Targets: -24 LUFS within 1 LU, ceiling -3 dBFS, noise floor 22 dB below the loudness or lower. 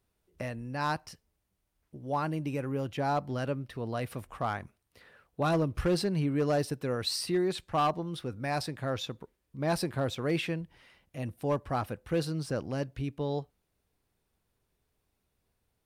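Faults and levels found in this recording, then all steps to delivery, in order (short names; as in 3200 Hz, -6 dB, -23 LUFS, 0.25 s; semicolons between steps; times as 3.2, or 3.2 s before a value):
clipped 0.5%; flat tops at -21.5 dBFS; loudness -32.5 LUFS; peak -21.5 dBFS; loudness target -24.0 LUFS
-> clip repair -21.5 dBFS; gain +8.5 dB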